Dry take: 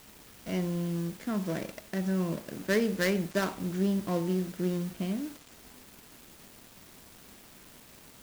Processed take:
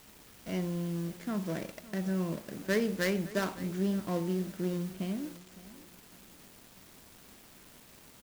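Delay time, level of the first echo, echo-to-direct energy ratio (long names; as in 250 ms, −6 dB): 561 ms, −18.5 dB, −18.0 dB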